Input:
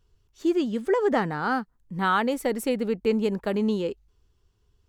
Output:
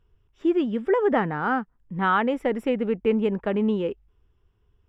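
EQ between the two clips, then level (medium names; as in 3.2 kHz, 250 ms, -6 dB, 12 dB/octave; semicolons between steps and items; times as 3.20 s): Savitzky-Golay filter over 25 samples; +1.5 dB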